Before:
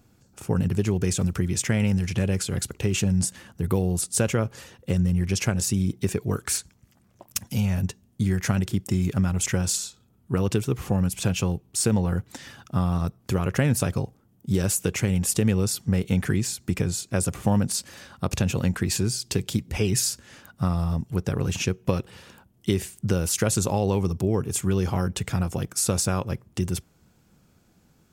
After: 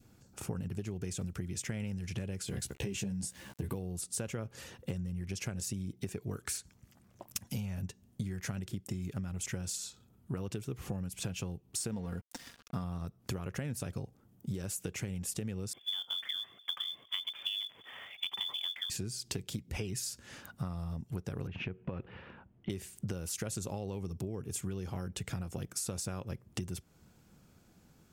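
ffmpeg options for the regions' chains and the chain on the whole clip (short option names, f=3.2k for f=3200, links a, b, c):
-filter_complex "[0:a]asettb=1/sr,asplit=3[a][b][c];[a]atrim=end=2.464[d];[b]atrim=start=2.46:end=3.75,asetpts=PTS-STARTPTS,afade=t=in:d=0.004:c=qsin,afade=t=out:st=1.286:d=0.004:c=qsin,asuperstop=centerf=1300:order=4:qfactor=6.4,aeval=exprs='val(0)*gte(abs(val(0)),0.00355)':c=same,asplit=2[e][f];[f]adelay=15,volume=-3.5dB[g];[e][g]amix=inputs=2:normalize=0,atrim=end_sample=56889[h];[c]atrim=start=3.746[i];[d][h]acrossfade=d=0.004:c1=hsin:c2=qsin[j];[j][i]acrossfade=d=0.004:c1=qsin:c2=hsin,asettb=1/sr,asplit=3[k][l][m];[k]atrim=end=11.914[n];[l]atrim=start=11.91:end=12.84,asetpts=PTS-STARTPTS,afade=t=in:d=0.004:c=qsin,afade=t=out:st=0.926:d=0.004:c=qsin,equalizer=f=5k:w=6.4:g=6,aeval=exprs='sgn(val(0))*max(abs(val(0))-0.00708,0)':c=same,aecho=1:1:4.3:0.36,atrim=end_sample=41013[o];[m]atrim=start=12.836[p];[n][o]acrossfade=d=0.004:c1=hsin:c2=qsin[q];[q][p]acrossfade=d=0.004:c1=qsin:c2=hsin,asettb=1/sr,asplit=3[r][s][t];[r]atrim=end=15.734[u];[s]atrim=start=15.73:end=18.9,asetpts=PTS-STARTPTS,afade=t=in:d=0.004:c=qsin,afade=t=out:st=3.166:d=0.004:c=qsin,lowpass=f=3.1k:t=q:w=0.5098,lowpass=f=3.1k:t=q:w=0.6013,lowpass=f=3.1k:t=q:w=0.9,lowpass=f=3.1k:t=q:w=2.563,afreqshift=-3600,highpass=f=83:w=0.5412,highpass=f=83:w=1.3066,acrusher=bits=5:mode=log:mix=0:aa=0.000001[v];[t]atrim=start=18.896[w];[u][v]acrossfade=d=0.004:c1=hsin:c2=qsin[x];[x][w]acrossfade=d=0.004:c1=qsin:c2=hsin,asettb=1/sr,asplit=3[y][z][aa];[y]atrim=end=21.474[ab];[z]atrim=start=21.47:end=22.7,asetpts=PTS-STARTPTS,afade=t=in:d=0.004:c=qsin,afade=t=out:st=1.226:d=0.004:c=qsin,lowpass=f=2.6k:w=0.5412,lowpass=f=2.6k:w=1.3066,acompressor=threshold=-26dB:ratio=3:attack=3.2:release=140:knee=1:detection=peak[ac];[aa]atrim=start=22.696[ad];[ab][ac]acrossfade=d=0.004:c1=hsin:c2=qsin[ae];[ae][ad]acrossfade=d=0.004:c1=qsin:c2=hsin,adynamicequalizer=threshold=0.00501:dfrequency=1000:dqfactor=1.6:tfrequency=1000:tqfactor=1.6:attack=5:release=100:ratio=0.375:range=2.5:mode=cutabove:tftype=bell,acompressor=threshold=-32dB:ratio=12,volume=-2dB"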